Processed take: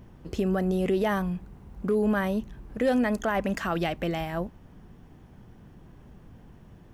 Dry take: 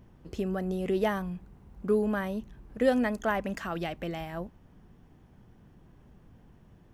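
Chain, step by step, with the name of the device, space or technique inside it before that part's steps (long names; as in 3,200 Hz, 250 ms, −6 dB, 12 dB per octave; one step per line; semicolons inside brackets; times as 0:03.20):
clipper into limiter (hard clipping −16.5 dBFS, distortion −29 dB; brickwall limiter −23 dBFS, peak gain reduction 6.5 dB)
level +6 dB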